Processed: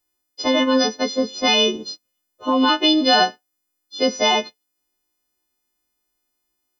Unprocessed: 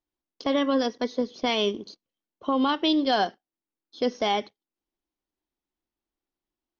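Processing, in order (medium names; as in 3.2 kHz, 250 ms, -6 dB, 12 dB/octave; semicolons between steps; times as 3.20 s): partials quantised in pitch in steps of 3 st; trim +6 dB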